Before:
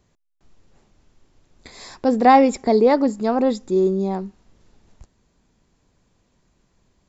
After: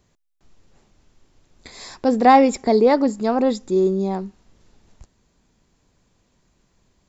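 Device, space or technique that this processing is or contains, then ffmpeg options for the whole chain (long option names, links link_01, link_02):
exciter from parts: -filter_complex "[0:a]asplit=2[link_01][link_02];[link_02]highpass=frequency=2700:poles=1,asoftclip=type=tanh:threshold=-24dB,volume=-8.5dB[link_03];[link_01][link_03]amix=inputs=2:normalize=0"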